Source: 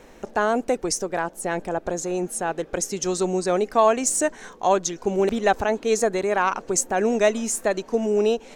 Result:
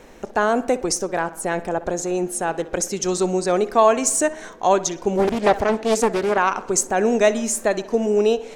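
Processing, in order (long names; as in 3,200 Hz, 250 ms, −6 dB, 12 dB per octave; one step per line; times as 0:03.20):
tape delay 61 ms, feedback 61%, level −15.5 dB, low-pass 3,800 Hz
0:05.17–0:06.38: highs frequency-modulated by the lows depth 0.77 ms
level +2.5 dB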